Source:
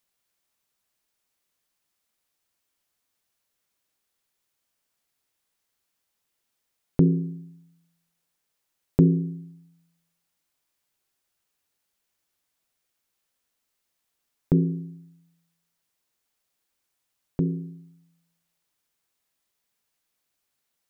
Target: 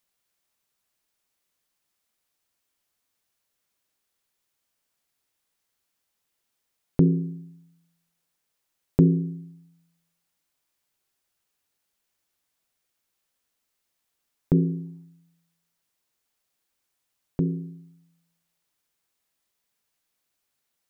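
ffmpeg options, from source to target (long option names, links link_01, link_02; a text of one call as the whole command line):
ffmpeg -i in.wav -filter_complex "[0:a]asplit=3[link_01][link_02][link_03];[link_01]afade=type=out:start_time=14.54:duration=0.02[link_04];[link_02]equalizer=frequency=830:width=2.9:gain=13.5,afade=type=in:start_time=14.54:duration=0.02,afade=type=out:start_time=15.03:duration=0.02[link_05];[link_03]afade=type=in:start_time=15.03:duration=0.02[link_06];[link_04][link_05][link_06]amix=inputs=3:normalize=0" out.wav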